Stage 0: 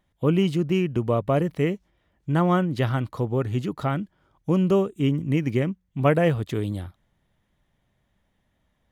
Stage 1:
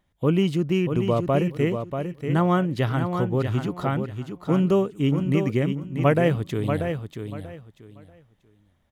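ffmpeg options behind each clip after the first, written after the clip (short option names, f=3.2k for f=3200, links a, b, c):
-af "aecho=1:1:637|1274|1911:0.447|0.0983|0.0216"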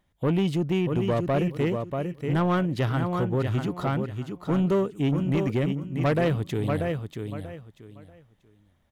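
-af "asoftclip=type=tanh:threshold=-17.5dB"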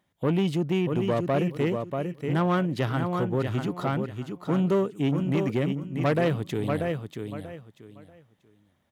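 -af "highpass=120"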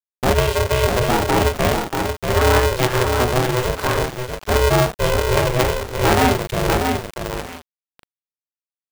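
-filter_complex "[0:a]aeval=exprs='val(0)*gte(abs(val(0)),0.0168)':c=same,asplit=2[a][b];[b]adelay=39,volume=-3.5dB[c];[a][c]amix=inputs=2:normalize=0,aeval=exprs='val(0)*sgn(sin(2*PI*250*n/s))':c=same,volume=6.5dB"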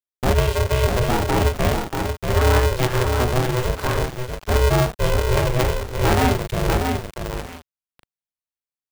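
-af "lowshelf=f=140:g=7.5,volume=-4dB"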